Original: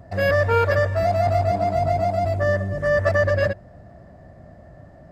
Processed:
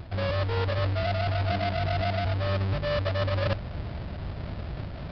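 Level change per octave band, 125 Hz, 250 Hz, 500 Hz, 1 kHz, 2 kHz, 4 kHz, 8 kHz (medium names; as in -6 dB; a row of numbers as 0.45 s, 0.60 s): -2.5 dB, -3.5 dB, -10.5 dB, -9.0 dB, -9.5 dB, +3.5 dB, no reading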